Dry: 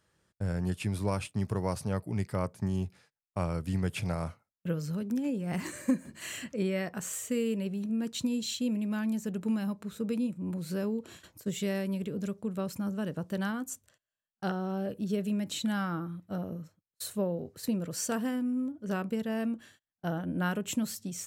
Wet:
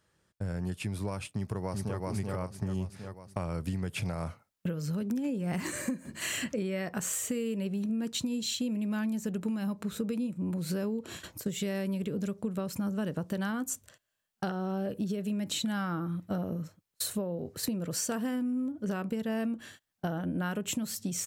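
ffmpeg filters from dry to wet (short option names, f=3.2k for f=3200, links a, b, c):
-filter_complex "[0:a]asplit=2[a][b];[b]afade=t=in:st=1.32:d=0.01,afade=t=out:st=2.04:d=0.01,aecho=0:1:380|760|1140|1520|1900:0.749894|0.299958|0.119983|0.0479932|0.0191973[c];[a][c]amix=inputs=2:normalize=0,dynaudnorm=f=950:g=5:m=9dB,alimiter=limit=-15dB:level=0:latency=1:release=482,acompressor=threshold=-30dB:ratio=6"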